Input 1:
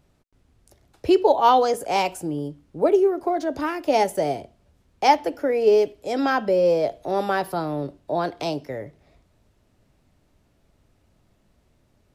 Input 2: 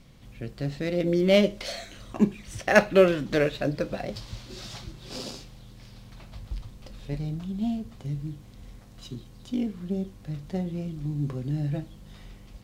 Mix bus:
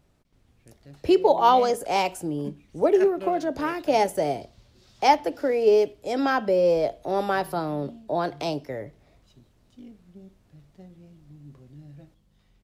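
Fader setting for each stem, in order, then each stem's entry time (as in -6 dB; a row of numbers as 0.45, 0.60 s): -1.5, -17.5 dB; 0.00, 0.25 s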